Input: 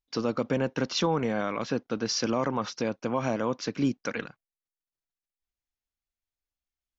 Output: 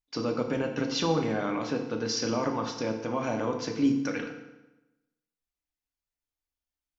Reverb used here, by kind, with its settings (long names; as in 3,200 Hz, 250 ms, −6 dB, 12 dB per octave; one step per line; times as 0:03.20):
feedback delay network reverb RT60 1 s, low-frequency decay 1.1×, high-frequency decay 0.85×, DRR 2.5 dB
level −3 dB